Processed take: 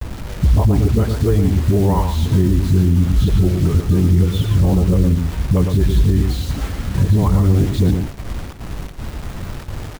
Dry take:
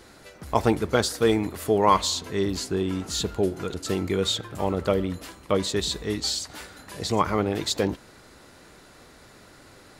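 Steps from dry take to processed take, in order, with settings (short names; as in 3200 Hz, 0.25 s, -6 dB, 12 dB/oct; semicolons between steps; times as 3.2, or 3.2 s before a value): repeated pitch sweeps -2 st, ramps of 0.246 s; gate with hold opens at -42 dBFS; tone controls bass +9 dB, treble -7 dB; compressor 2.5:1, threshold -31 dBFS, peak gain reduction 12.5 dB; RIAA curve playback; dispersion highs, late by 64 ms, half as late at 350 Hz; bit-crush 7-bit; echo 0.114 s -7.5 dB; maximiser +13 dB; gain -5 dB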